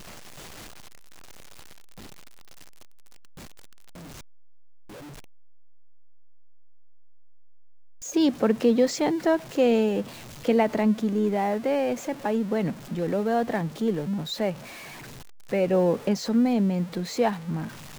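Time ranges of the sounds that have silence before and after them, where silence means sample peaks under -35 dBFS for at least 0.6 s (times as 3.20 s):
8.03–14.54 s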